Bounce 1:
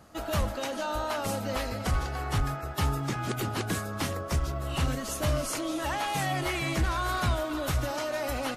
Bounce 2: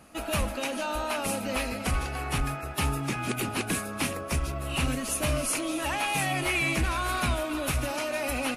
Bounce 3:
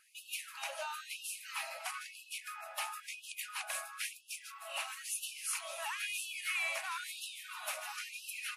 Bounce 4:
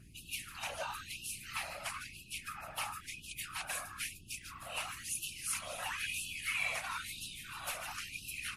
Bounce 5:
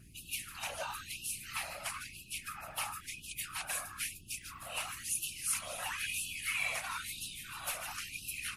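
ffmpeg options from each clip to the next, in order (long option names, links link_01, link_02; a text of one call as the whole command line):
ffmpeg -i in.wav -af "equalizer=frequency=100:width_type=o:width=0.33:gain=-9,equalizer=frequency=250:width_type=o:width=0.33:gain=5,equalizer=frequency=2500:width_type=o:width=0.33:gain=11,equalizer=frequency=10000:width_type=o:width=0.33:gain=11" out.wav
ffmpeg -i in.wav -af "afftfilt=real='re*gte(b*sr/1024,540*pow(2600/540,0.5+0.5*sin(2*PI*1*pts/sr)))':imag='im*gte(b*sr/1024,540*pow(2600/540,0.5+0.5*sin(2*PI*1*pts/sr)))':win_size=1024:overlap=0.75,volume=-7.5dB" out.wav
ffmpeg -i in.wav -af "aeval=exprs='val(0)+0.00158*(sin(2*PI*60*n/s)+sin(2*PI*2*60*n/s)/2+sin(2*PI*3*60*n/s)/3+sin(2*PI*4*60*n/s)/4+sin(2*PI*5*60*n/s)/5)':channel_layout=same,afftfilt=real='hypot(re,im)*cos(2*PI*random(0))':imag='hypot(re,im)*sin(2*PI*random(1))':win_size=512:overlap=0.75,volume=6dB" out.wav
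ffmpeg -i in.wav -af "highshelf=frequency=8500:gain=6.5" out.wav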